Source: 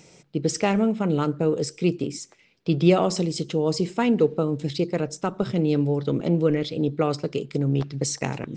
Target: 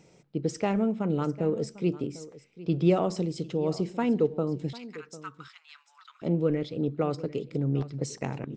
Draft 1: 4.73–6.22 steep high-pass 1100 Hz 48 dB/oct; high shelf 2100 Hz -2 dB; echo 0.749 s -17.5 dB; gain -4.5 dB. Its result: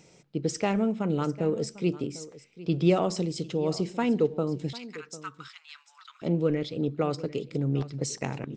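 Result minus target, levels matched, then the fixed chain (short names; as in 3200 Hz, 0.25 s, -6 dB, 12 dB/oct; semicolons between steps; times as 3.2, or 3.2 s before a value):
4000 Hz band +5.0 dB
4.73–6.22 steep high-pass 1100 Hz 48 dB/oct; high shelf 2100 Hz -8.5 dB; echo 0.749 s -17.5 dB; gain -4.5 dB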